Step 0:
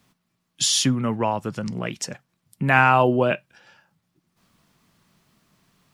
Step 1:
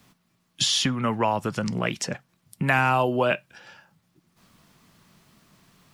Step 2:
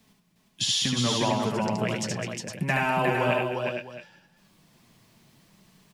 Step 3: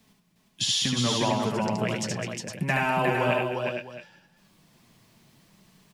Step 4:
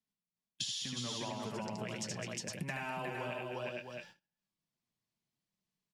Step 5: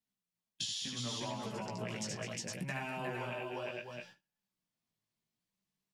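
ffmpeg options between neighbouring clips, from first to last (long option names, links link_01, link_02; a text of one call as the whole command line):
ffmpeg -i in.wav -filter_complex "[0:a]acrossover=split=670|4300[link_01][link_02][link_03];[link_01]acompressor=threshold=-30dB:ratio=4[link_04];[link_02]acompressor=threshold=-27dB:ratio=4[link_05];[link_03]acompressor=threshold=-38dB:ratio=4[link_06];[link_04][link_05][link_06]amix=inputs=3:normalize=0,volume=5dB" out.wav
ffmpeg -i in.wav -filter_complex "[0:a]equalizer=frequency=1300:width=2.9:gain=-7,flanger=delay=4.5:depth=5.1:regen=37:speed=0.7:shape=sinusoidal,asplit=2[link_01][link_02];[link_02]aecho=0:1:74|206|358|461|668:0.708|0.282|0.668|0.447|0.178[link_03];[link_01][link_03]amix=inputs=2:normalize=0" out.wav
ffmpeg -i in.wav -af anull out.wav
ffmpeg -i in.wav -af "agate=range=-29dB:threshold=-51dB:ratio=16:detection=peak,equalizer=frequency=5700:width_type=o:width=2:gain=4.5,acompressor=threshold=-32dB:ratio=10,volume=-4.5dB" out.wav
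ffmpeg -i in.wav -af "flanger=delay=15:depth=4.1:speed=0.69,volume=3dB" out.wav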